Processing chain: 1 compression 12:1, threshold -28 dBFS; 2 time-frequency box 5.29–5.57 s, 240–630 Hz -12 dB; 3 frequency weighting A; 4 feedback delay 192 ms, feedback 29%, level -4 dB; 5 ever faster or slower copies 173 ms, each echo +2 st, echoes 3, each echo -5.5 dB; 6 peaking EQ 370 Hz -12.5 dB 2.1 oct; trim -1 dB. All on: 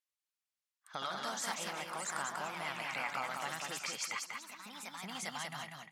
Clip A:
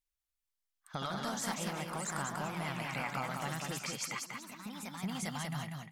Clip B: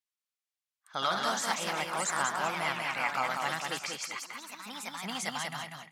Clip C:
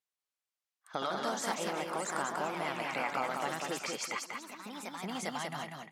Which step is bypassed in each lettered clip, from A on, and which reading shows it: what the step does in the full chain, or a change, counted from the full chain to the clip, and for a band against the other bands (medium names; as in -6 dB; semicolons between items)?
3, 125 Hz band +13.0 dB; 1, mean gain reduction 6.0 dB; 6, 250 Hz band +6.5 dB